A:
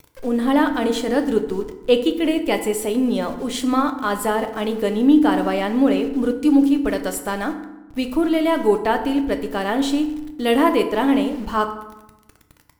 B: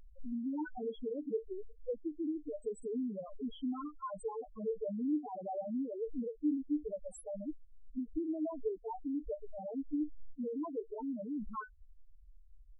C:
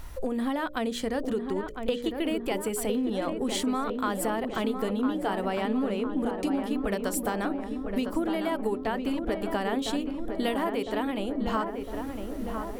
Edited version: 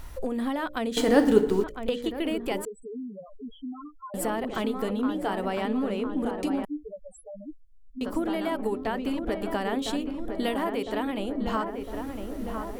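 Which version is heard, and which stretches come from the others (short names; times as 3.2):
C
0.97–1.64 from A
2.65–4.14 from B
6.65–8.01 from B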